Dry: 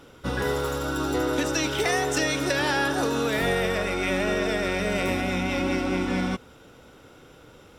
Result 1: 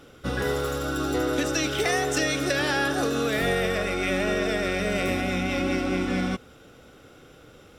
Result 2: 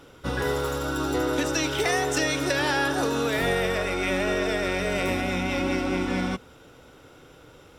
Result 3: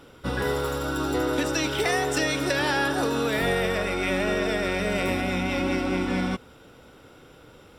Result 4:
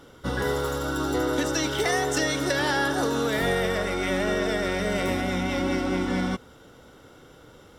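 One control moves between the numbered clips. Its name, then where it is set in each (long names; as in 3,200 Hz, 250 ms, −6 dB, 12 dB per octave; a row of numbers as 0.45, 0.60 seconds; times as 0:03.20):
notch filter, centre frequency: 940, 210, 6,400, 2,500 Hertz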